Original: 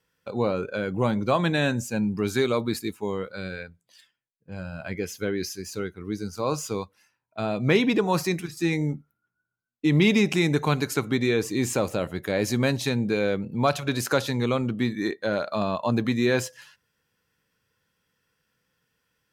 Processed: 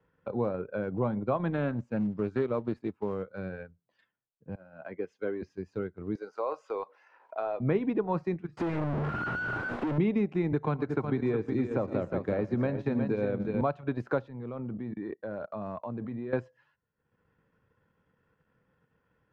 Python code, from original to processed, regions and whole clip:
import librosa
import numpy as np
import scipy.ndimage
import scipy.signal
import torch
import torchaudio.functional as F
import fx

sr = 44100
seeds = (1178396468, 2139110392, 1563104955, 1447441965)

y = fx.chain(x, sr, fx.block_float(bits=5),
    fx.doppler_dist(depth_ms=0.14), at=(1.51, 3.24))
y = fx.chain(y, sr, fx.highpass(hz=330.0, slope=12),
    fx.band_widen(depth_pct=70), at=(4.55, 5.42))
y = fx.chain(y, sr, fx.highpass(hz=470.0, slope=24),
    fx.env_flatten(amount_pct=50), at=(6.15, 7.6))
y = fx.chain(y, sr, fx.clip_1bit(),
    fx.bass_treble(bass_db=-11, treble_db=-1),
    fx.leveller(passes=5), at=(8.57, 9.98))
y = fx.chain(y, sr, fx.echo_multitap(ms=(115, 362, 611), db=(-14.5, -7.0, -19.0)),
    fx.band_squash(depth_pct=70), at=(10.52, 13.61))
y = fx.chain(y, sr, fx.level_steps(step_db=17),
    fx.air_absorb(metres=140.0), at=(14.28, 16.33))
y = scipy.signal.sosfilt(scipy.signal.butter(2, 1200.0, 'lowpass', fs=sr, output='sos'), y)
y = fx.transient(y, sr, attack_db=2, sustain_db=-8)
y = fx.band_squash(y, sr, depth_pct=40)
y = y * librosa.db_to_amplitude(-5.5)